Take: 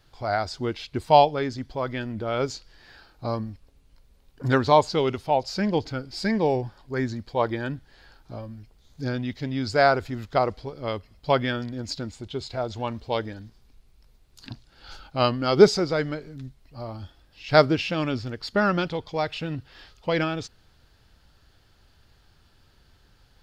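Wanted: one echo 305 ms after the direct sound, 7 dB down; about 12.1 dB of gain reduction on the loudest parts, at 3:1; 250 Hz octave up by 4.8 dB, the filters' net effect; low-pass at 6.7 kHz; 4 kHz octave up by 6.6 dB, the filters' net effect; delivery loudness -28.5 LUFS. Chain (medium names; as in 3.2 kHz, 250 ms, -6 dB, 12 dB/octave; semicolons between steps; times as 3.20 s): low-pass 6.7 kHz; peaking EQ 250 Hz +6 dB; peaking EQ 4 kHz +9 dB; compression 3:1, threshold -22 dBFS; delay 305 ms -7 dB; trim -1 dB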